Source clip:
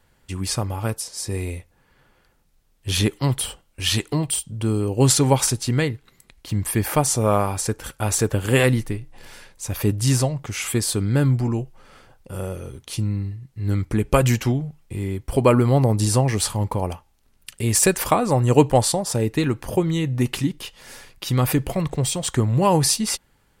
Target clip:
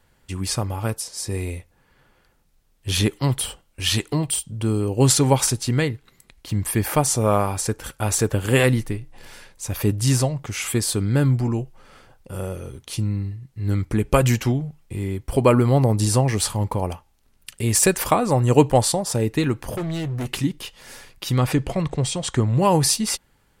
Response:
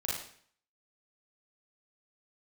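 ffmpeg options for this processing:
-filter_complex "[0:a]asettb=1/sr,asplit=3[link_01][link_02][link_03];[link_01]atrim=end=19.704[link_04];[link_02]atrim=start=19.7:end=20.31,asetpts=PTS-STARTPTS,afade=type=in:duration=0.004:curve=qsin,afade=type=out:start_time=0.606:duration=0.004:curve=qsin,volume=24dB,asoftclip=hard,volume=-24dB[link_05];[link_03]atrim=start=20.306[link_06];[link_04][link_05]acrossfade=duration=0.004:curve1=hsin:curve2=qsin[link_07];[link_07][link_06]acrossfade=duration=0.004:curve1=qsin:curve2=hsin,asettb=1/sr,asplit=3[link_08][link_09][link_10];[link_08]atrim=end=21.384[link_11];[link_09]atrim=start=21.38:end=22.59,asetpts=PTS-STARTPTS,afade=type=in:duration=0.004:curve=qsin,afade=type=out:start_time=1.206:duration=0.004:curve=qsin,lowpass=7700[link_12];[link_10]atrim=start=22.586[link_13];[link_11][link_12]acrossfade=duration=0.004:curve1=hsin:curve2=qsin[link_14];[link_14][link_13]acrossfade=duration=0.004:curve1=qsin:curve2=hsin"

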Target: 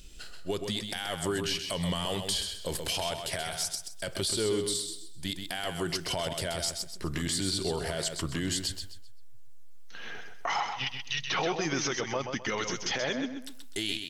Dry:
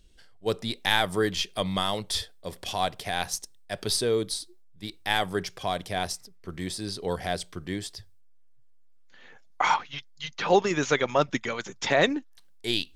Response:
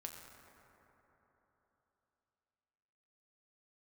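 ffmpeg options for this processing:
-filter_complex "[0:a]highshelf=frequency=4600:gain=9,acompressor=threshold=-34dB:ratio=6,alimiter=level_in=5.5dB:limit=-24dB:level=0:latency=1:release=13,volume=-5.5dB,asplit=2[link_01][link_02];[link_02]aecho=0:1:119|238|357|476:0.473|0.142|0.0426|0.0128[link_03];[link_01][link_03]amix=inputs=2:normalize=0,asetrate=40517,aresample=44100,volume=8.5dB"

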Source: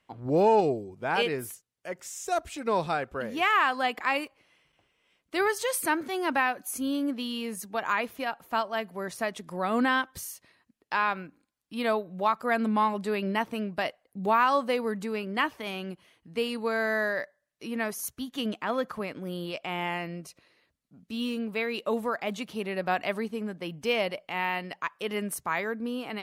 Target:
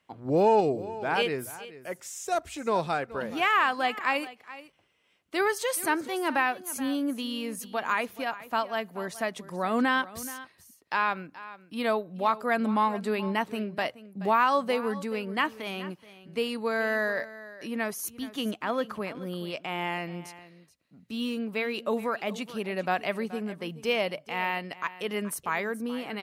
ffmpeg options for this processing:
ffmpeg -i in.wav -filter_complex "[0:a]highpass=54,bandreject=frequency=60:width_type=h:width=6,bandreject=frequency=120:width_type=h:width=6,asplit=2[link_01][link_02];[link_02]aecho=0:1:427:0.15[link_03];[link_01][link_03]amix=inputs=2:normalize=0" out.wav

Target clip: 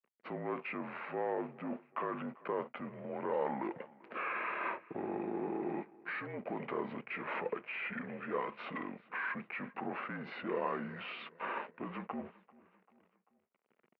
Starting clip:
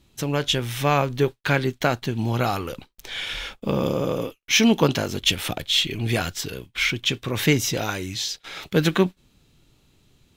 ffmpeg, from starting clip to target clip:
ffmpeg -i in.wav -filter_complex "[0:a]aemphasis=mode=reproduction:type=50fm,areverse,acompressor=threshold=-27dB:ratio=10,areverse,alimiter=level_in=4dB:limit=-24dB:level=0:latency=1:release=23,volume=-4dB,asoftclip=type=tanh:threshold=-29dB,afreqshift=-61,aeval=exprs='sgn(val(0))*max(abs(val(0))-0.00211,0)':channel_layout=same,highpass=frequency=310:width=0.5412,highpass=frequency=310:width=1.3066,equalizer=frequency=390:width_type=q:width=4:gain=-10,equalizer=frequency=610:width_type=q:width=4:gain=3,equalizer=frequency=2300:width_type=q:width=4:gain=-6,lowpass=frequency=2700:width=0.5412,lowpass=frequency=2700:width=1.3066,asplit=2[link_01][link_02];[link_02]aecho=0:1:290|580|870:0.075|0.0382|0.0195[link_03];[link_01][link_03]amix=inputs=2:normalize=0,asetrate=32667,aresample=44100,volume=6.5dB" out.wav

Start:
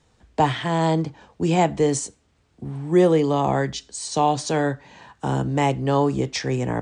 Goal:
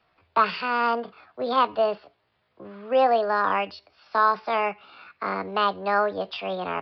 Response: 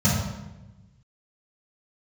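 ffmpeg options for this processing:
-filter_complex "[0:a]acrossover=split=350 3100:gain=0.2 1 0.112[link_01][link_02][link_03];[link_01][link_02][link_03]amix=inputs=3:normalize=0,asetrate=64194,aresample=44100,atempo=0.686977,aresample=11025,aresample=44100"

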